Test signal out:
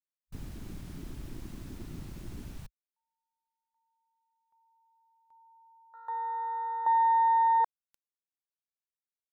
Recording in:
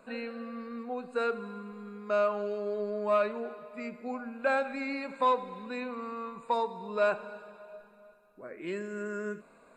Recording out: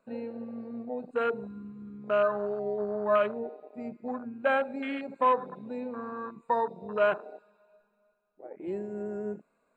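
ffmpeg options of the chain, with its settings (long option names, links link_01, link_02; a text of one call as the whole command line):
ffmpeg -i in.wav -af "afwtdn=0.02,volume=2dB" out.wav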